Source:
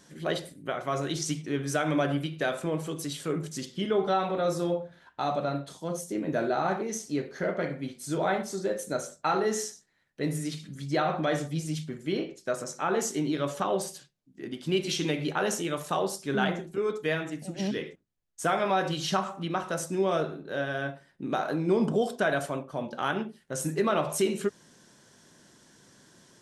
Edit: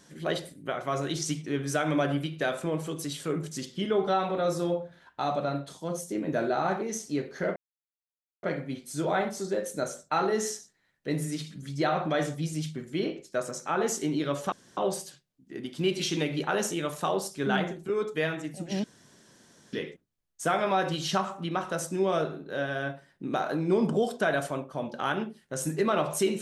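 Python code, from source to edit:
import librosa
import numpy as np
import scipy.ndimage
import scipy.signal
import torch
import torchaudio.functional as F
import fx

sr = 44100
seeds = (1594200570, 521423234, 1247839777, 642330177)

y = fx.edit(x, sr, fx.insert_silence(at_s=7.56, length_s=0.87),
    fx.insert_room_tone(at_s=13.65, length_s=0.25),
    fx.insert_room_tone(at_s=17.72, length_s=0.89), tone=tone)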